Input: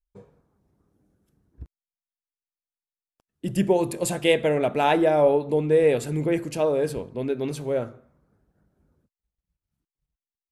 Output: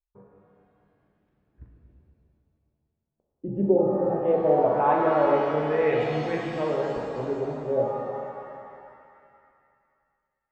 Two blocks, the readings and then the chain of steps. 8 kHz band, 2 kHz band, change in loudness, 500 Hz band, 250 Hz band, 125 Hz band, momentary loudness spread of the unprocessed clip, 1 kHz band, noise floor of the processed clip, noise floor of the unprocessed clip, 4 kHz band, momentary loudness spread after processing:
under -20 dB, -3.5 dB, -1.5 dB, -1.0 dB, -2.0 dB, -3.5 dB, 10 LU, +2.5 dB, -81 dBFS, under -85 dBFS, -10.5 dB, 14 LU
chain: LFO low-pass sine 0.21 Hz 480–2000 Hz; shimmer reverb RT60 2.3 s, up +7 st, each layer -8 dB, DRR -1 dB; gain -7.5 dB

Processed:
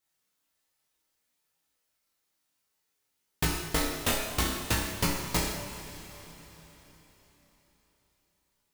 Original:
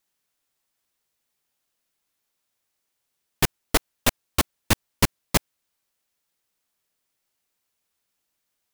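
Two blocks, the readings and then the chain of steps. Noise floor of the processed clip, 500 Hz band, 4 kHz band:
-79 dBFS, -4.5 dB, -4.0 dB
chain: flutter echo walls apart 5.3 m, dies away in 0.4 s; chorus voices 2, 0.61 Hz, delay 19 ms, depth 2.3 ms; two-slope reverb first 0.5 s, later 4.2 s, from -18 dB, DRR -0.5 dB; compressor, threshold -22 dBFS, peak gain reduction 7.5 dB; gain -2 dB

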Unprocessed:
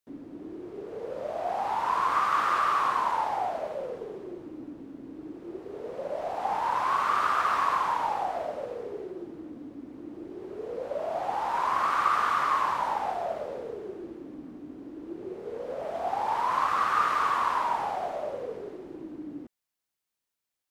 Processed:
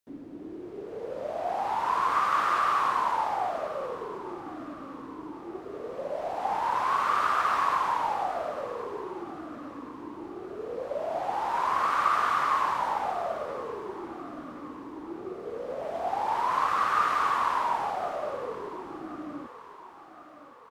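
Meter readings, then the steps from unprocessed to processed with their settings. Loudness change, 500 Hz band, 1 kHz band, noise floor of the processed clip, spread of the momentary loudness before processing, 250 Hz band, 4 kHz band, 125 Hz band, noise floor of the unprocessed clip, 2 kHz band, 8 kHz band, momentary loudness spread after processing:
-0.5 dB, 0.0 dB, 0.0 dB, -47 dBFS, 18 LU, 0.0 dB, 0.0 dB, 0.0 dB, under -85 dBFS, 0.0 dB, n/a, 16 LU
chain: feedback echo 1.069 s, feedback 51%, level -16 dB

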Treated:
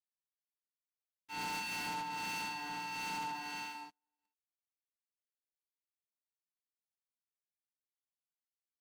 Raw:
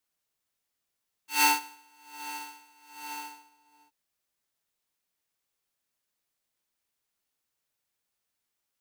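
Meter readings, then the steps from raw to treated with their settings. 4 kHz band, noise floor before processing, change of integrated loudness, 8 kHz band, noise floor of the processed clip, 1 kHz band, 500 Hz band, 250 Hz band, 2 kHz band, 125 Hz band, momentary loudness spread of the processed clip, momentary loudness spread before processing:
-7.0 dB, -84 dBFS, -10.5 dB, -12.5 dB, under -85 dBFS, -6.0 dB, -1.5 dB, -3.5 dB, -6.5 dB, n/a, 8 LU, 22 LU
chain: gate with hold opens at -53 dBFS; three-band isolator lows -13 dB, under 380 Hz, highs -20 dB, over 5200 Hz; on a send: tapped delay 0.319/0.439 s -13.5/-11 dB; on the sum: harmonic tremolo 1.5 Hz, depth 50%, crossover 1500 Hz; reverse; compressor 10:1, threshold -41 dBFS, peak gain reduction 18.5 dB; reverse; sample leveller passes 5; bell 210 Hz +15 dB 0.82 oct; gain -4.5 dB

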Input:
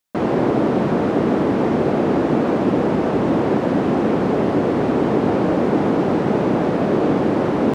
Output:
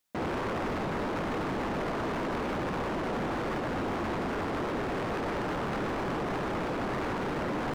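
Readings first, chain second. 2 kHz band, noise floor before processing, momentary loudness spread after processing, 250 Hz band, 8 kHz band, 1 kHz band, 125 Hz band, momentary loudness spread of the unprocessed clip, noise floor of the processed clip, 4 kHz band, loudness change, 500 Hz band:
-5.5 dB, -21 dBFS, 0 LU, -16.5 dB, n/a, -9.0 dB, -13.5 dB, 1 LU, -33 dBFS, -5.0 dB, -14.0 dB, -15.0 dB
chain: wavefolder -18 dBFS; limiter -27 dBFS, peak gain reduction 9 dB

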